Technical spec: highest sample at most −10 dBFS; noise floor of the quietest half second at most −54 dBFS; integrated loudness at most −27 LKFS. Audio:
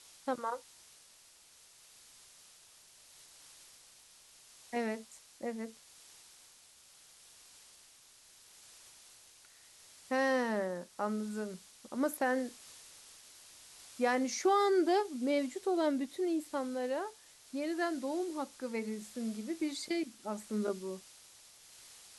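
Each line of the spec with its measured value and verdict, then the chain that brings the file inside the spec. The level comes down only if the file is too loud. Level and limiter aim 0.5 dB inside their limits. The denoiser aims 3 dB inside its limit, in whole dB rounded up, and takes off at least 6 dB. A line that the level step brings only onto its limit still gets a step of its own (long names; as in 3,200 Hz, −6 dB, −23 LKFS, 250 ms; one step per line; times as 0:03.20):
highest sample −18.0 dBFS: in spec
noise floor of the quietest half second −61 dBFS: in spec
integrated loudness −35.0 LKFS: in spec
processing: no processing needed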